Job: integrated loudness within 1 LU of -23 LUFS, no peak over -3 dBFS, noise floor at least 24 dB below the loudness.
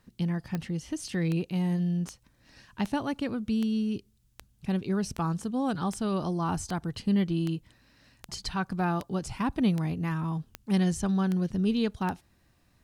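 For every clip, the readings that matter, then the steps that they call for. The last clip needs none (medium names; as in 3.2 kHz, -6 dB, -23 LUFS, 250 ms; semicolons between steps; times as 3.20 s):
clicks found 16; loudness -30.0 LUFS; peak level -15.0 dBFS; loudness target -23.0 LUFS
-> de-click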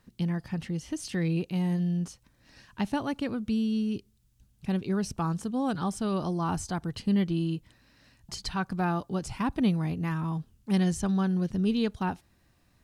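clicks found 0; loudness -30.0 LUFS; peak level -15.0 dBFS; loudness target -23.0 LUFS
-> trim +7 dB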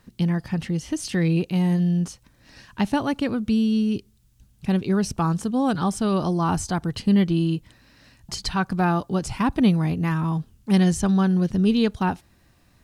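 loudness -23.0 LUFS; peak level -8.0 dBFS; noise floor -59 dBFS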